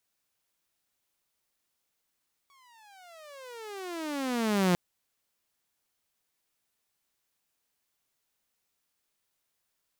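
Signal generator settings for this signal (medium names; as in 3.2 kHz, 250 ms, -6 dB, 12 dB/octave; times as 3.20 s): gliding synth tone saw, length 2.25 s, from 1.13 kHz, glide -32.5 st, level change +38 dB, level -18.5 dB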